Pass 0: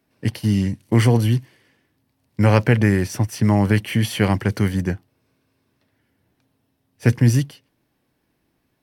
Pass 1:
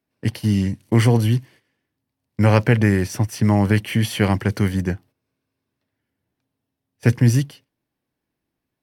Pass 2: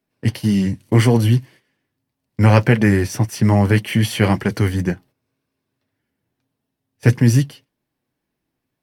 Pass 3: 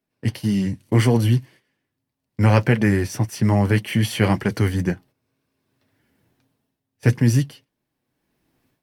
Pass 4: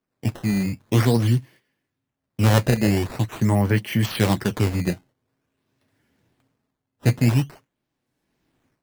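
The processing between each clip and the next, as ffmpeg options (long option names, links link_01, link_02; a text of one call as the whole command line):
ffmpeg -i in.wav -af "agate=range=-11dB:threshold=-44dB:ratio=16:detection=peak" out.wav
ffmpeg -i in.wav -af "flanger=delay=4.7:depth=3.6:regen=-47:speed=1.8:shape=sinusoidal,volume=6.5dB" out.wav
ffmpeg -i in.wav -af "dynaudnorm=framelen=620:gausssize=3:maxgain=16.5dB,volume=-4dB" out.wav
ffmpeg -i in.wav -af "acrusher=samples=11:mix=1:aa=0.000001:lfo=1:lforange=17.6:lforate=0.46,volume=-1.5dB" out.wav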